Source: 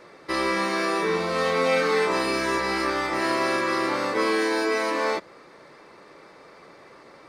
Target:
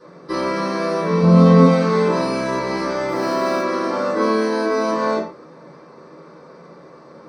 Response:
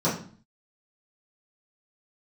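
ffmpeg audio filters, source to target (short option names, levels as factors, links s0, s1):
-filter_complex "[0:a]asettb=1/sr,asplit=3[s0][s1][s2];[s0]atrim=end=1.224[s3];[s1]atrim=start=1.22:end=1.65,asetpts=PTS-STARTPTS,afade=t=in:d=0.004:c=qsin,afade=t=out:st=0.426:d=0.004:c=qsin,lowshelf=f=390:g=11[s4];[s2]atrim=start=1.646[s5];[s3][s4]acrossfade=d=0.004:c1=hsin:c2=qsin[s6];[s6][s5]acrossfade=d=0.004:c1=qsin:c2=hsin,asettb=1/sr,asplit=3[s7][s8][s9];[s7]atrim=end=3.094[s10];[s8]atrim=start=3.09:end=3.62,asetpts=PTS-STARTPTS,afade=t=in:d=0.004:c=qsin,afade=t=out:st=0.526:d=0.004:c=qsin,acrusher=bits=4:mode=log:mix=0:aa=0.000001[s11];[s9]atrim=start=3.616[s12];[s10][s11]acrossfade=d=0.004:c1=hsin:c2=qsin[s13];[s13][s12]acrossfade=d=0.004:c1=qsin:c2=hsin[s14];[1:a]atrim=start_sample=2205,afade=t=out:st=0.2:d=0.01,atrim=end_sample=9261[s15];[s14][s15]afir=irnorm=-1:irlink=0,volume=0.282"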